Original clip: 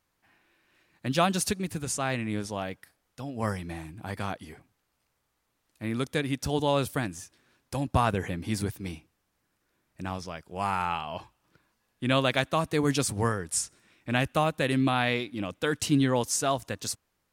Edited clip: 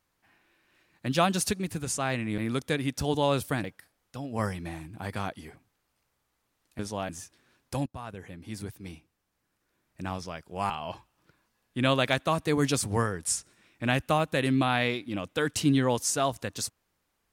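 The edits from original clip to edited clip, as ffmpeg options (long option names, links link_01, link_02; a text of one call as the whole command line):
ffmpeg -i in.wav -filter_complex "[0:a]asplit=7[link_01][link_02][link_03][link_04][link_05][link_06][link_07];[link_01]atrim=end=2.382[link_08];[link_02]atrim=start=5.828:end=7.092[link_09];[link_03]atrim=start=2.678:end=5.832[link_10];[link_04]atrim=start=2.378:end=2.682[link_11];[link_05]atrim=start=7.088:end=7.86,asetpts=PTS-STARTPTS,afade=type=out:start_time=0.768:duration=0.004:curve=hsin:silence=0.0891251[link_12];[link_06]atrim=start=7.86:end=10.702,asetpts=PTS-STARTPTS,afade=type=in:duration=2.16:silence=0.0891251[link_13];[link_07]atrim=start=10.958[link_14];[link_08][link_09]acrossfade=duration=0.004:curve1=hsin:curve2=hsin[link_15];[link_15][link_10]acrossfade=duration=0.004:curve1=hsin:curve2=hsin[link_16];[link_16][link_11]acrossfade=duration=0.004:curve1=hsin:curve2=hsin[link_17];[link_12][link_13]concat=n=2:v=0:a=1[link_18];[link_17][link_18]acrossfade=duration=0.004:curve1=hsin:curve2=hsin[link_19];[link_19][link_14]acrossfade=duration=0.004:curve1=hsin:curve2=hsin" out.wav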